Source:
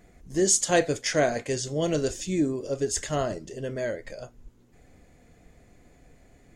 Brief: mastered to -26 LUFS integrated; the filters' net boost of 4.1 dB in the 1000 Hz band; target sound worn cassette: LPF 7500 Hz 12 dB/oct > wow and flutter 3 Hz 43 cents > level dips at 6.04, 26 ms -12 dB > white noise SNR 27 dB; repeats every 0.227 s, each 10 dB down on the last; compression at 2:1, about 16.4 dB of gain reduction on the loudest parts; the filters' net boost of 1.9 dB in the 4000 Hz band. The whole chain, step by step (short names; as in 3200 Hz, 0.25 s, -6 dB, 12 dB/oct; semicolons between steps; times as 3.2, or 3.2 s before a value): bell 1000 Hz +7 dB; bell 4000 Hz +3 dB; compressor 2:1, threshold -47 dBFS; LPF 7500 Hz 12 dB/oct; feedback echo 0.227 s, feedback 32%, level -10 dB; wow and flutter 3 Hz 43 cents; level dips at 6.04, 26 ms -12 dB; white noise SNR 27 dB; gain +13.5 dB